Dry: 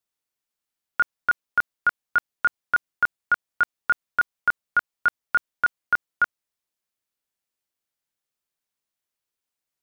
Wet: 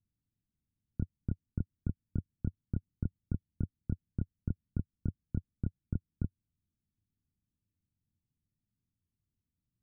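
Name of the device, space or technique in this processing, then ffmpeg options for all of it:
the neighbour's flat through the wall: -af "lowpass=frequency=230:width=0.5412,lowpass=frequency=230:width=1.3066,equalizer=frequency=92:width_type=o:width=0.98:gain=8,volume=15.5dB"

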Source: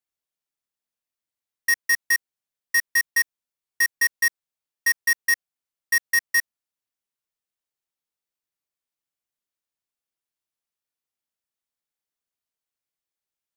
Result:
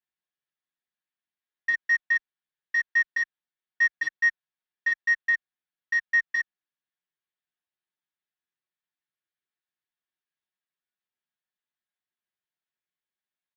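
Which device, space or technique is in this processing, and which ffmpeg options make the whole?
barber-pole flanger into a guitar amplifier: -filter_complex "[0:a]asplit=2[link_01][link_02];[link_02]adelay=11.1,afreqshift=-2.2[link_03];[link_01][link_03]amix=inputs=2:normalize=1,asoftclip=type=tanh:threshold=-21dB,highpass=80,equalizer=frequency=530:width_type=q:width=4:gain=-6,equalizer=frequency=1700:width_type=q:width=4:gain=8,equalizer=frequency=3500:width_type=q:width=4:gain=3,lowpass=frequency=4000:width=0.5412,lowpass=frequency=4000:width=1.3066,aecho=1:1:5.5:0.42,volume=-1dB"

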